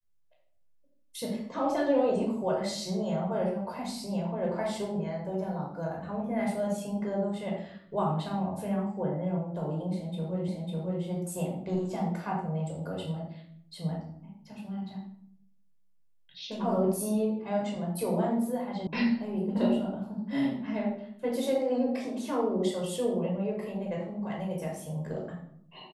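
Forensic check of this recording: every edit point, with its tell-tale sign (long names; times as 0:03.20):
0:10.48: the same again, the last 0.55 s
0:18.87: cut off before it has died away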